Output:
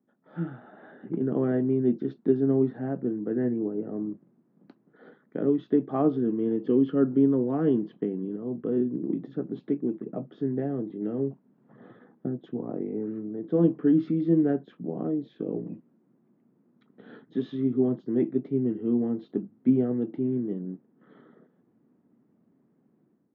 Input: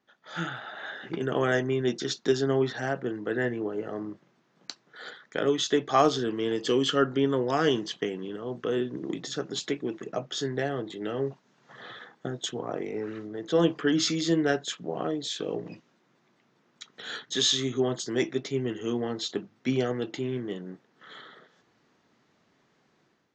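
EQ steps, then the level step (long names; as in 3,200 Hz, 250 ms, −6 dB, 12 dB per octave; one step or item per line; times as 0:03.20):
resonant band-pass 220 Hz, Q 1.2
high-frequency loss of the air 340 metres
parametric band 250 Hz +3.5 dB 0.77 octaves
+5.0 dB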